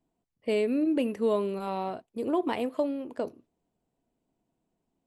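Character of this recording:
background noise floor −82 dBFS
spectral slope −3.5 dB per octave

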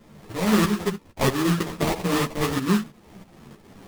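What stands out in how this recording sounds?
tremolo saw up 3.1 Hz, depth 70%
aliases and images of a low sample rate 1,500 Hz, jitter 20%
a shimmering, thickened sound

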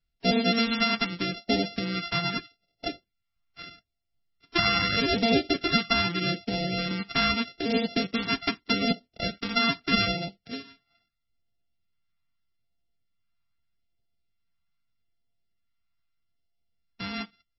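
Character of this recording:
a buzz of ramps at a fixed pitch in blocks of 64 samples
phaser sweep stages 2, 0.8 Hz, lowest notch 530–1,100 Hz
MP3

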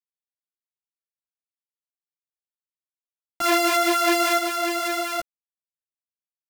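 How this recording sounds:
a buzz of ramps at a fixed pitch in blocks of 64 samples
sample-and-hold tremolo 3.2 Hz, depth 65%
a quantiser's noise floor 12 bits, dither none
a shimmering, thickened sound

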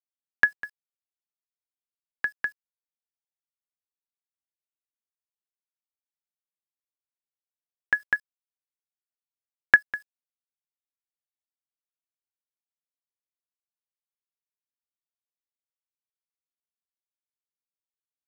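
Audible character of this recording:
chopped level 2.5 Hz, depth 60%, duty 40%
a quantiser's noise floor 10 bits, dither none

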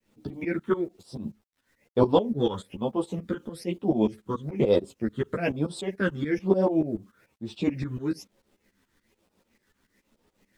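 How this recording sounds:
phaser sweep stages 8, 1.1 Hz, lowest notch 670–2,100 Hz
a quantiser's noise floor 12 bits, dither none
tremolo saw up 6.9 Hz, depth 90%
a shimmering, thickened sound

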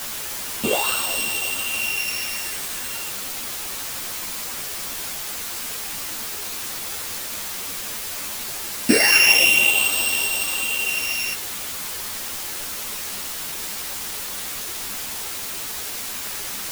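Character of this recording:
a buzz of ramps at a fixed pitch in blocks of 16 samples
phaser sweep stages 8, 0.22 Hz, lowest notch 630–1,900 Hz
a quantiser's noise floor 6 bits, dither triangular
a shimmering, thickened sound

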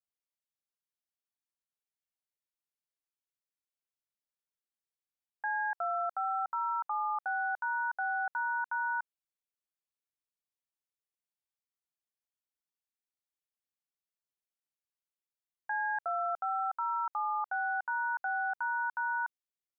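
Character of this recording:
background noise floor −95 dBFS
spectral slope +3.0 dB per octave

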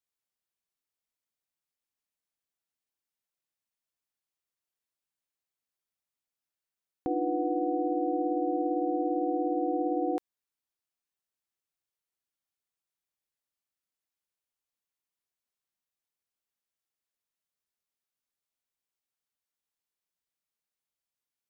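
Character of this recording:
background noise floor −92 dBFS
spectral slope +6.5 dB per octave

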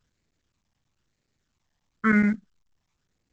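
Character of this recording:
phaser sweep stages 12, 1 Hz, lowest notch 420–1,100 Hz
chopped level 9.4 Hz, depth 65%, duty 90%
mu-law

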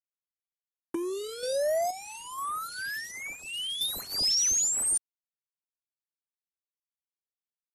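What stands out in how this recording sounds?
a quantiser's noise floor 6 bits, dither none
sample-and-hold tremolo 2.1 Hz, depth 65%
phaser sweep stages 2, 1.3 Hz, lowest notch 690–3,900 Hz
AAC

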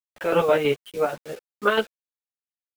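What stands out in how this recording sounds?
chopped level 6.2 Hz, depth 60%, duty 50%
a quantiser's noise floor 8 bits, dither none
a shimmering, thickened sound

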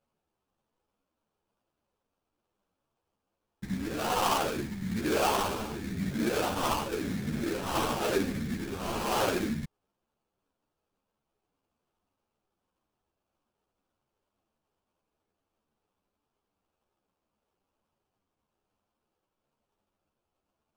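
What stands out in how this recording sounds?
phaser sweep stages 2, 1 Hz, lowest notch 560–2,300 Hz
aliases and images of a low sample rate 2,000 Hz, jitter 20%
a shimmering, thickened sound

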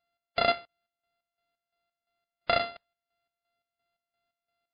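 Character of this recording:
a buzz of ramps at a fixed pitch in blocks of 64 samples
chopped level 2.9 Hz, depth 65%, duty 50%
MP3

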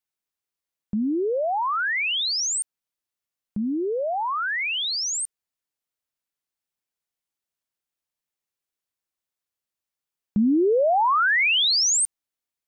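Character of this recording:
background noise floor −89 dBFS
spectral slope −1.5 dB per octave

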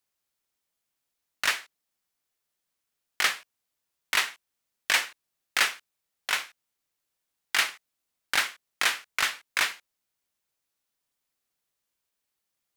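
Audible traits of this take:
background noise floor −83 dBFS
spectral slope +0.5 dB per octave

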